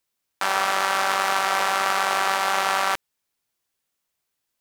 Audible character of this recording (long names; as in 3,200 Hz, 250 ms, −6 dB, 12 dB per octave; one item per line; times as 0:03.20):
background noise floor −79 dBFS
spectral slope −1.5 dB per octave